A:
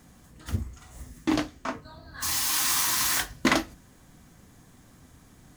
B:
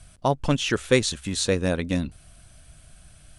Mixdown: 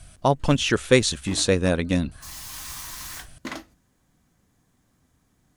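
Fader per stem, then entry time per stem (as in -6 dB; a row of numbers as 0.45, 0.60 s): -12.0, +2.5 dB; 0.00, 0.00 s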